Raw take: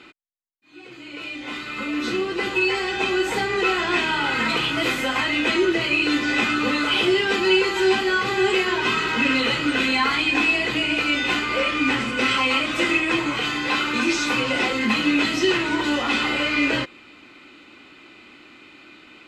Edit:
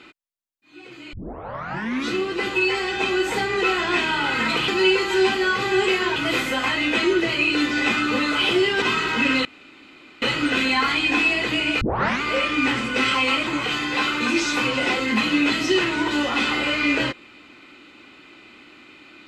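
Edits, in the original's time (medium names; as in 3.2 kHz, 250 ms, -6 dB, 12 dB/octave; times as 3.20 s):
1.13 s: tape start 0.96 s
7.34–8.82 s: move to 4.68 s
9.45 s: insert room tone 0.77 s
11.04 s: tape start 0.41 s
12.70–13.20 s: delete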